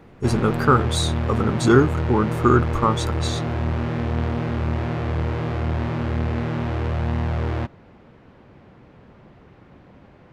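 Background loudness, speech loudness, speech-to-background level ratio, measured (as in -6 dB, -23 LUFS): -25.0 LUFS, -21.0 LUFS, 4.0 dB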